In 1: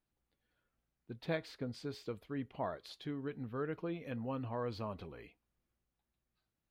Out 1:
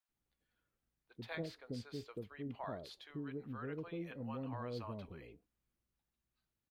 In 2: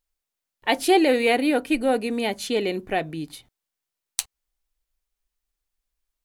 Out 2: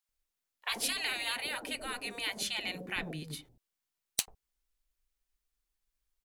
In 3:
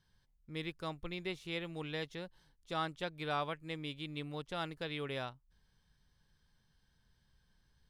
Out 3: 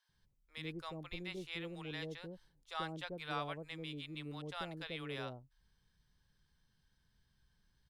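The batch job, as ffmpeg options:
-filter_complex "[0:a]afftfilt=real='re*lt(hypot(re,im),0.178)':imag='im*lt(hypot(re,im),0.178)':win_size=1024:overlap=0.75,acrossover=split=640[link_01][link_02];[link_01]adelay=90[link_03];[link_03][link_02]amix=inputs=2:normalize=0,aeval=exprs='clip(val(0),-1,0.211)':channel_layout=same,volume=-2.5dB"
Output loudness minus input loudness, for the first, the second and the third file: −4.0, −12.0, −3.5 LU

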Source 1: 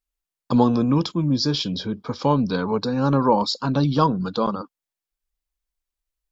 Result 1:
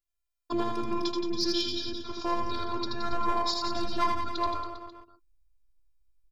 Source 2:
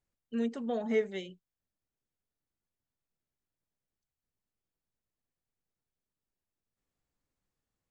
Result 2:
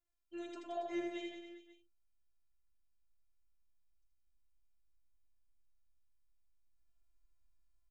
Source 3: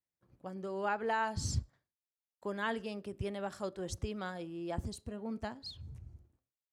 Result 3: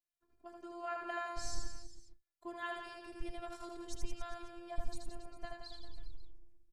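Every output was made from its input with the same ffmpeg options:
-filter_complex "[0:a]asubboost=boost=9:cutoff=81,aeval=exprs='clip(val(0),-1,0.168)':channel_layout=same,afftfilt=real='hypot(re,im)*cos(PI*b)':imag='0':win_size=512:overlap=0.75,asplit=2[link_01][link_02];[link_02]aecho=0:1:80|172|277.8|399.5|539.4:0.631|0.398|0.251|0.158|0.1[link_03];[link_01][link_03]amix=inputs=2:normalize=0,volume=-2.5dB"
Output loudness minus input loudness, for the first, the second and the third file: −9.5, −10.0, −7.5 LU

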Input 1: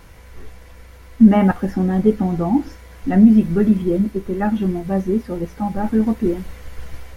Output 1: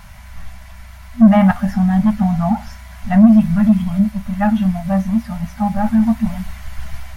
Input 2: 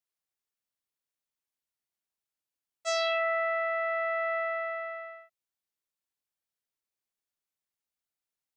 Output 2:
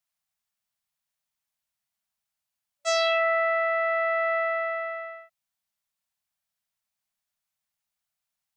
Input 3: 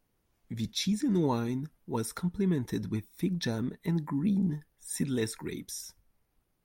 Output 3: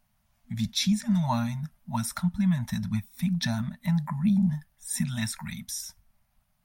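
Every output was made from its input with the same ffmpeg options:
-af "acontrast=68,afftfilt=real='re*(1-between(b*sr/4096,240,580))':imag='im*(1-between(b*sr/4096,240,580))':win_size=4096:overlap=0.75,volume=-1.5dB"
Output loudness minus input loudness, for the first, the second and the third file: +2.5, +5.0, +3.5 LU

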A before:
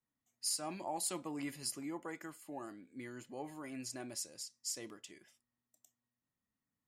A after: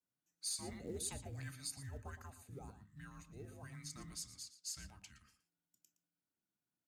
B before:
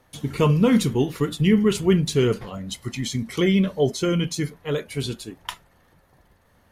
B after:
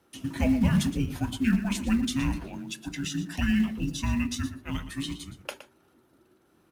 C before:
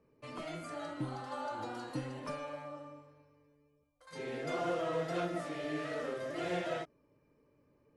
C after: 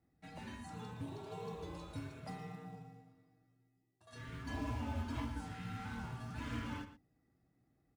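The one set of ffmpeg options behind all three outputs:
-filter_complex "[0:a]afreqshift=-410,highpass=frequency=44:width=0.5412,highpass=frequency=44:width=1.3066,bandreject=frequency=50:width_type=h:width=6,bandreject=frequency=100:width_type=h:width=6,bandreject=frequency=150:width_type=h:width=6,bandreject=frequency=200:width_type=h:width=6,bandreject=frequency=250:width_type=h:width=6,bandreject=frequency=300:width_type=h:width=6,asplit=2[link_01][link_02];[link_02]acrusher=bits=4:mode=log:mix=0:aa=0.000001,volume=-8dB[link_03];[link_01][link_03]amix=inputs=2:normalize=0,asplit=2[link_04][link_05];[link_05]adelay=116.6,volume=-12dB,highshelf=frequency=4000:gain=-2.62[link_06];[link_04][link_06]amix=inputs=2:normalize=0,volume=-7.5dB"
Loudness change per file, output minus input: −5.0, −6.5, −6.0 LU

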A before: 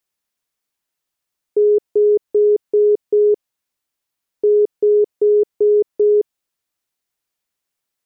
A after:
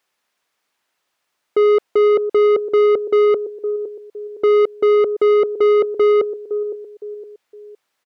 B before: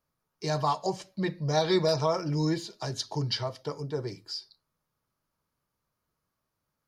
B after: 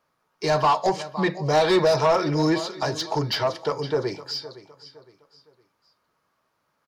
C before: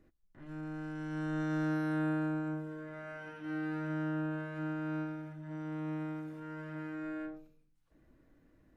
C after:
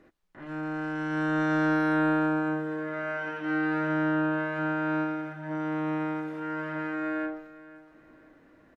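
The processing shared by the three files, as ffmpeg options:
-filter_complex "[0:a]aecho=1:1:512|1024|1536:0.126|0.0441|0.0154,asplit=2[link_01][link_02];[link_02]highpass=frequency=720:poles=1,volume=22dB,asoftclip=type=tanh:threshold=-8.5dB[link_03];[link_01][link_03]amix=inputs=2:normalize=0,lowpass=frequency=1900:poles=1,volume=-6dB"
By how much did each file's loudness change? 0.0, +7.0, +9.0 LU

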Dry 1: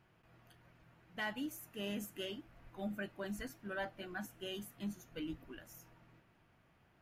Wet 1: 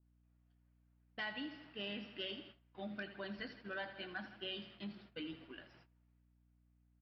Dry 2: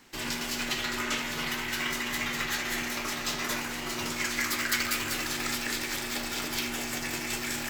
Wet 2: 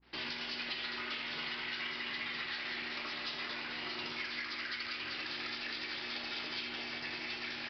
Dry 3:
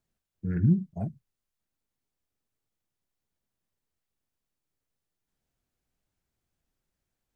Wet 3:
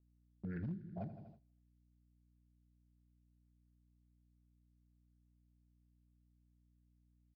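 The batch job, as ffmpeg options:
-af "highpass=frequency=200:poles=1,aecho=1:1:81|162|243|324|405|486|567:0.224|0.134|0.0806|0.0484|0.029|0.0174|0.0104,agate=range=-23dB:threshold=-57dB:ratio=16:detection=peak,acompressor=threshold=-39dB:ratio=6,aresample=11025,volume=34.5dB,asoftclip=hard,volume=-34.5dB,aresample=44100,aeval=exprs='val(0)+0.000316*(sin(2*PI*60*n/s)+sin(2*PI*2*60*n/s)/2+sin(2*PI*3*60*n/s)/3+sin(2*PI*4*60*n/s)/4+sin(2*PI*5*60*n/s)/5)':channel_layout=same,adynamicequalizer=threshold=0.00141:dfrequency=1800:dqfactor=0.7:tfrequency=1800:tqfactor=0.7:attack=5:release=100:ratio=0.375:range=3:mode=boostabove:tftype=highshelf,volume=-1dB"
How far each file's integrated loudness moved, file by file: −2.0, −8.0, −17.0 LU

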